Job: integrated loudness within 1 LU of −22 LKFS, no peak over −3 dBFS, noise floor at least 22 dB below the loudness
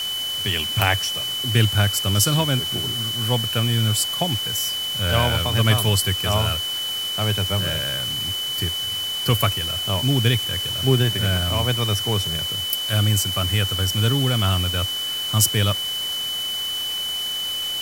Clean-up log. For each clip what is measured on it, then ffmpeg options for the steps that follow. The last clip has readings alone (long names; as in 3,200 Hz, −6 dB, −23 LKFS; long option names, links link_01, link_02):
interfering tone 3,000 Hz; level of the tone −24 dBFS; background noise floor −27 dBFS; target noise floor −43 dBFS; integrated loudness −20.5 LKFS; sample peak −1.5 dBFS; target loudness −22.0 LKFS
→ -af "bandreject=frequency=3000:width=30"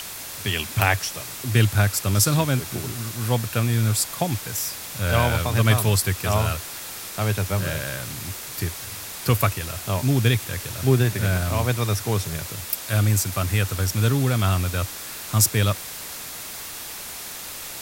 interfering tone none found; background noise floor −35 dBFS; target noise floor −46 dBFS
→ -af "afftdn=noise_reduction=11:noise_floor=-35"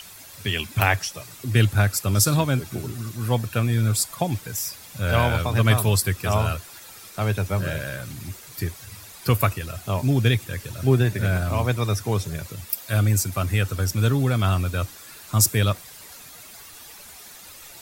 background noise floor −44 dBFS; target noise floor −46 dBFS
→ -af "afftdn=noise_reduction=6:noise_floor=-44"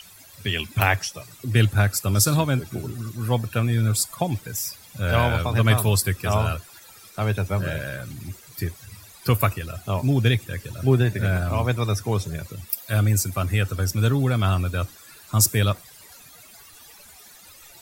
background noise floor −48 dBFS; integrated loudness −23.5 LKFS; sample peak −2.0 dBFS; target loudness −22.0 LKFS
→ -af "volume=1.5dB,alimiter=limit=-3dB:level=0:latency=1"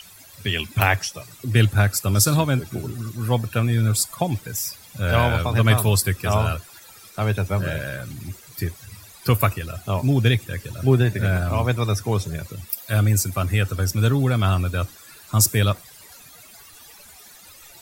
integrated loudness −22.0 LKFS; sample peak −3.0 dBFS; background noise floor −46 dBFS